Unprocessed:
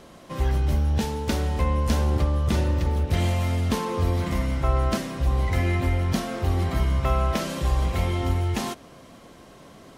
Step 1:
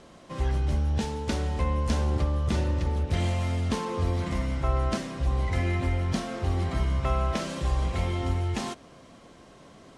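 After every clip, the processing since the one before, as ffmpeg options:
-af "lowpass=f=9600:w=0.5412,lowpass=f=9600:w=1.3066,volume=0.668"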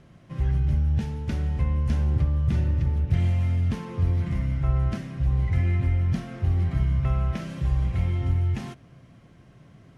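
-af "equalizer=f=125:t=o:w=1:g=11,equalizer=f=250:t=o:w=1:g=-4,equalizer=f=500:t=o:w=1:g=-7,equalizer=f=1000:t=o:w=1:g=-8,equalizer=f=4000:t=o:w=1:g=-8,equalizer=f=8000:t=o:w=1:g=-12"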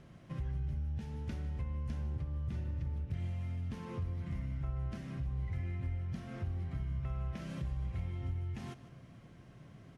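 -af "acompressor=threshold=0.0178:ratio=3,aecho=1:1:153:0.158,volume=0.668"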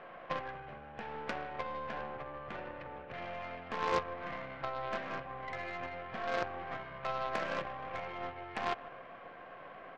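-af "highpass=500,equalizer=f=510:t=q:w=4:g=9,equalizer=f=740:t=q:w=4:g=10,equalizer=f=1100:t=q:w=4:g=9,equalizer=f=1600:t=q:w=4:g=7,equalizer=f=2400:t=q:w=4:g=3,lowpass=f=3000:w=0.5412,lowpass=f=3000:w=1.3066,aeval=exprs='0.0237*(cos(1*acos(clip(val(0)/0.0237,-1,1)))-cos(1*PI/2))+0.00335*(cos(3*acos(clip(val(0)/0.0237,-1,1)))-cos(3*PI/2))+0.00531*(cos(4*acos(clip(val(0)/0.0237,-1,1)))-cos(4*PI/2))+0.00422*(cos(6*acos(clip(val(0)/0.0237,-1,1)))-cos(6*PI/2))':c=same,volume=4.47"

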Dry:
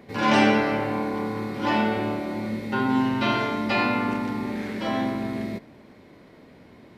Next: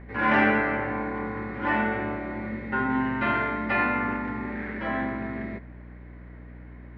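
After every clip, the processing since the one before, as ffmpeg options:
-af "aeval=exprs='val(0)+0.0126*(sin(2*PI*60*n/s)+sin(2*PI*2*60*n/s)/2+sin(2*PI*3*60*n/s)/3+sin(2*PI*4*60*n/s)/4+sin(2*PI*5*60*n/s)/5)':c=same,lowpass=f=1800:t=q:w=3,volume=0.596"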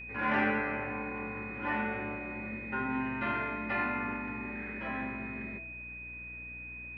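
-af "aeval=exprs='val(0)+0.02*sin(2*PI*2500*n/s)':c=same,bandreject=f=164.6:t=h:w=4,bandreject=f=329.2:t=h:w=4,bandreject=f=493.8:t=h:w=4,bandreject=f=658.4:t=h:w=4,bandreject=f=823:t=h:w=4,volume=0.398"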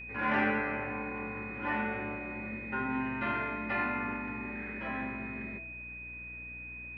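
-af anull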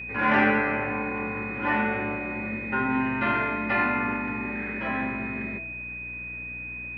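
-af "highpass=62,volume=2.51"

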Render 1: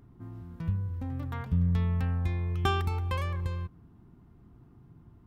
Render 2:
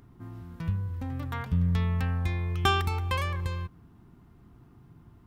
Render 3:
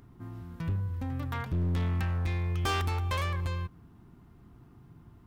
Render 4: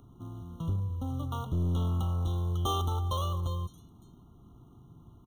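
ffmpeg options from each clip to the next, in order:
-af "tiltshelf=f=970:g=-3.5,volume=1.58"
-af "asoftclip=type=hard:threshold=0.0501"
-filter_complex "[0:a]acrossover=split=260|4500[s0][s1][s2];[s1]acrusher=bits=3:mode=log:mix=0:aa=0.000001[s3];[s2]aecho=1:1:562:0.266[s4];[s0][s3][s4]amix=inputs=3:normalize=0,afftfilt=real='re*eq(mod(floor(b*sr/1024/1400),2),0)':imag='im*eq(mod(floor(b*sr/1024/1400),2),0)':win_size=1024:overlap=0.75"

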